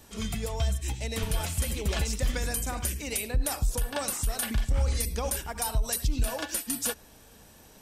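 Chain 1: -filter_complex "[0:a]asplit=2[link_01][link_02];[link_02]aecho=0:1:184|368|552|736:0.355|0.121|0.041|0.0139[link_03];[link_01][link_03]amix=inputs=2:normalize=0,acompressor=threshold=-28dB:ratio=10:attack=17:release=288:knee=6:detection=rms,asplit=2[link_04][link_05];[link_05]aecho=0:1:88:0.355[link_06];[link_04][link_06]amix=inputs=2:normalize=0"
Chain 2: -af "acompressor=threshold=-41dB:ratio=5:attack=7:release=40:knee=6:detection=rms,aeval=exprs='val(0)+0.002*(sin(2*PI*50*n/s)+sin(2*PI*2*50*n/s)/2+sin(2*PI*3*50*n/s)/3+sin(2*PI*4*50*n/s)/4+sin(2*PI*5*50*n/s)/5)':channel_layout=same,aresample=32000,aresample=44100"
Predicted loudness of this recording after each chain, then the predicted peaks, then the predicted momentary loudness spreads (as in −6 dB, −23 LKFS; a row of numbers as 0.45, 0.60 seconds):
−33.5, −42.0 LKFS; −19.5, −28.0 dBFS; 3, 3 LU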